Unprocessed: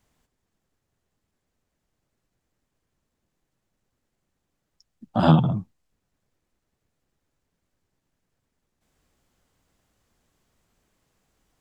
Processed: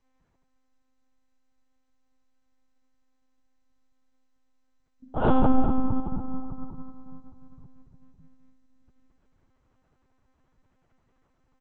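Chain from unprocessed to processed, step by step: low-pass 1.9 kHz 12 dB/octave; feedback delay 338 ms, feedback 27%, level -15 dB; reverberation RT60 2.6 s, pre-delay 3 ms, DRR -4.5 dB; monotone LPC vocoder at 8 kHz 260 Hz; trim -4.5 dB; SBC 128 kbps 16 kHz

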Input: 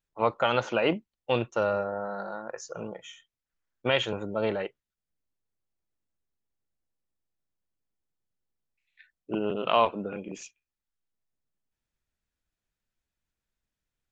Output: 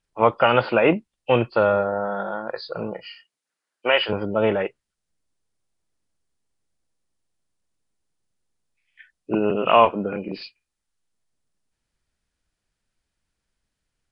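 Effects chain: knee-point frequency compression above 2.4 kHz 1.5:1; 3.03–4.08 s: high-pass 160 Hz -> 580 Hz 12 dB/octave; trim +8 dB

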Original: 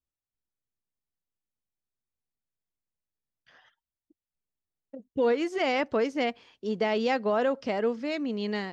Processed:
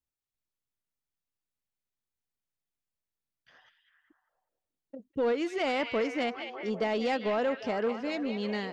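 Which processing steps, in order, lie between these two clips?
on a send: repeats whose band climbs or falls 199 ms, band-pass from 2.9 kHz, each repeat -0.7 oct, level -4.5 dB; on the sum: saturation -19.5 dBFS, distortion -19 dB; trim -1.5 dB

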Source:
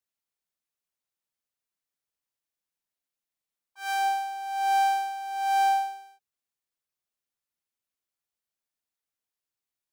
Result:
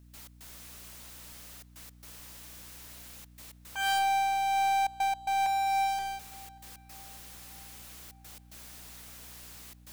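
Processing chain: 5.46–5.99 s: steep high-pass 710 Hz 48 dB/octave; peak limiter -24.5 dBFS, peak gain reduction 9.5 dB; power-law waveshaper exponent 0.35; trance gate ".x.xxxxxxxxx" 111 bpm -24 dB; hum 60 Hz, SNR 21 dB; on a send: filtered feedback delay 589 ms, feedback 59%, low-pass 3.4 kHz, level -23 dB

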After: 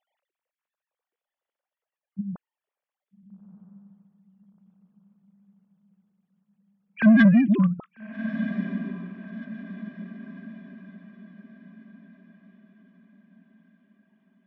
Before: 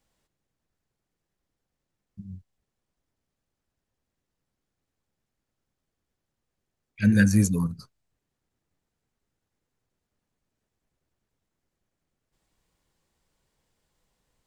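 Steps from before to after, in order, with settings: formants replaced by sine waves; saturation -17 dBFS, distortion -13 dB; echo that smears into a reverb 1279 ms, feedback 42%, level -12 dB; trim +7 dB

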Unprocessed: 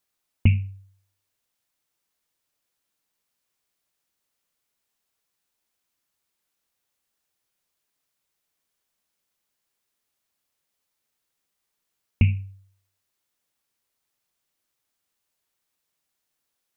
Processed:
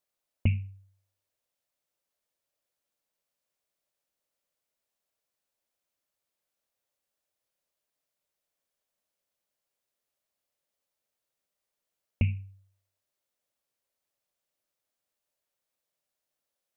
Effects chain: peaking EQ 580 Hz +10 dB 0.54 oct; trim -7.5 dB

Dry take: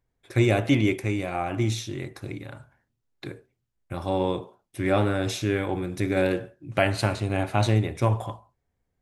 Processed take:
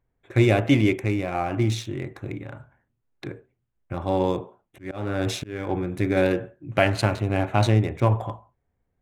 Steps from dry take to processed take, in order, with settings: local Wiener filter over 9 samples; 4.22–5.70 s: slow attack 335 ms; trim +2.5 dB

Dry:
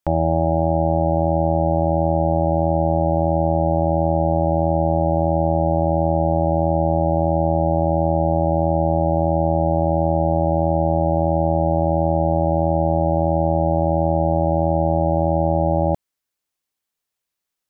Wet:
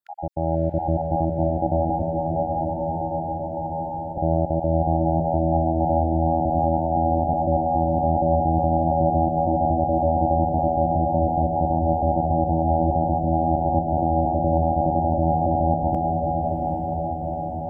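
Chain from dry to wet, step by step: random holes in the spectrogram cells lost 35%; 2.02–4.17 s: elliptic high-pass 910 Hz; echo that smears into a reverb 570 ms, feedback 49%, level -8.5 dB; level rider gain up to 8 dB; echo that smears into a reverb 800 ms, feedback 66%, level -4 dB; trim -8 dB

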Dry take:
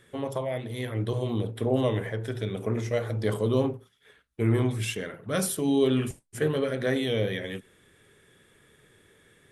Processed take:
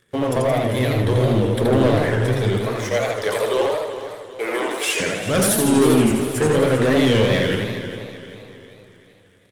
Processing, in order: 2.57–5.00 s: high-pass 510 Hz 24 dB/octave; waveshaping leveller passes 3; feedback delay 394 ms, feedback 47%, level -12 dB; modulated delay 81 ms, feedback 64%, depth 193 cents, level -3.5 dB

